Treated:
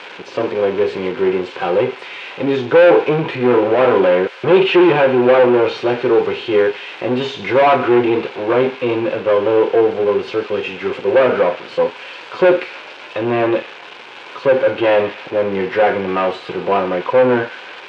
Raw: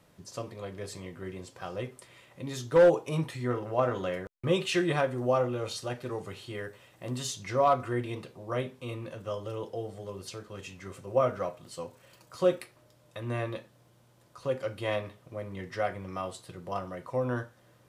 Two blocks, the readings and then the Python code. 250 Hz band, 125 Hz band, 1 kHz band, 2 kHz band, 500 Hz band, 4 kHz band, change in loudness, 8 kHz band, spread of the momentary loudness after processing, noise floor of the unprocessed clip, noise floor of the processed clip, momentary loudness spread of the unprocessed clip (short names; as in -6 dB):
+17.5 dB, +7.0 dB, +15.0 dB, +18.0 dB, +17.0 dB, +14.0 dB, +16.0 dB, n/a, 11 LU, -62 dBFS, -35 dBFS, 16 LU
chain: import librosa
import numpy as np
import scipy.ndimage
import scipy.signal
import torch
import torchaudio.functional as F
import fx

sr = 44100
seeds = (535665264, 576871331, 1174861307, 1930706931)

y = x + 0.5 * 10.0 ** (-27.5 / 20.0) * np.diff(np.sign(x), prepend=np.sign(x[:1]))
y = fx.hpss(y, sr, part='harmonic', gain_db=6)
y = fx.leveller(y, sr, passes=5)
y = fx.cabinet(y, sr, low_hz=370.0, low_slope=12, high_hz=2400.0, hz=(410.0, 630.0, 1200.0, 1900.0), db=(4, -8, -8, -9))
y = fx.echo_wet_highpass(y, sr, ms=141, feedback_pct=68, hz=1700.0, wet_db=-13)
y = y * librosa.db_to_amplitude(5.0)